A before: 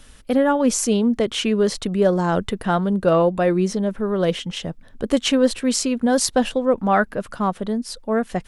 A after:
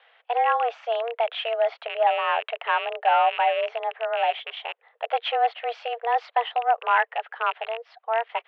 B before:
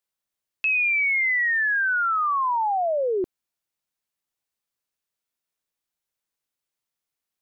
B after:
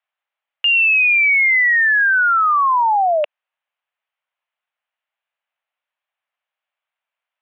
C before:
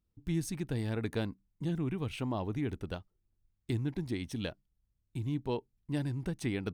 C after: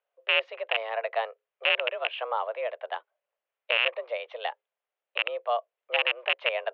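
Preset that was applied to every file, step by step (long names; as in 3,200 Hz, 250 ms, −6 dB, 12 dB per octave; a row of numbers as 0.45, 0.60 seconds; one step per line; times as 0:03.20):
loose part that buzzes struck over −33 dBFS, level −18 dBFS
in parallel at −4 dB: hard clipping −13.5 dBFS
on the sum: single-sideband voice off tune +230 Hz 340–2,900 Hz
normalise the peak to −9 dBFS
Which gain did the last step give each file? −6.0, +4.0, +4.5 decibels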